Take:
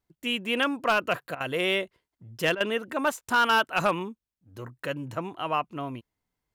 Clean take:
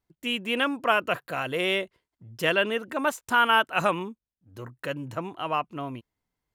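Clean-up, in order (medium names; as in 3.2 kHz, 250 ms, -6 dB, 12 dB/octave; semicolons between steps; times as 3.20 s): clip repair -15.5 dBFS; interpolate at 1.35/2.55 s, 53 ms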